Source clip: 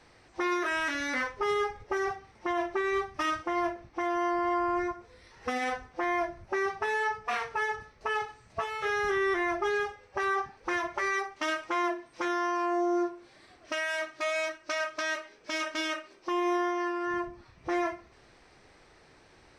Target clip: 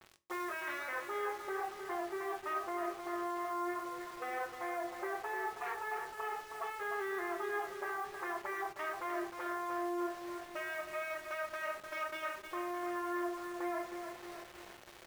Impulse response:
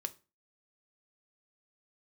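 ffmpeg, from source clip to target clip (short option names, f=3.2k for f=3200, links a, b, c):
-filter_complex "[0:a]highpass=f=420:w=0.5412,highpass=f=420:w=1.3066,highshelf=f=5.2k:g=-8.5,areverse,acompressor=threshold=-43dB:ratio=5,areverse,aecho=1:1:403|806|1209|1612|2015|2418|2821:0.422|0.24|0.137|0.0781|0.0445|0.0254|0.0145,acrossover=split=3000[a][b];[a]acontrast=50[c];[c][b]amix=inputs=2:normalize=0,atempo=1.3,acrusher=bits=7:mix=0:aa=0.000001[d];[1:a]atrim=start_sample=2205[e];[d][e]afir=irnorm=-1:irlink=0,adynamicequalizer=threshold=0.00178:dfrequency=2700:dqfactor=0.7:tfrequency=2700:tqfactor=0.7:attack=5:release=100:ratio=0.375:range=2.5:mode=cutabove:tftype=highshelf"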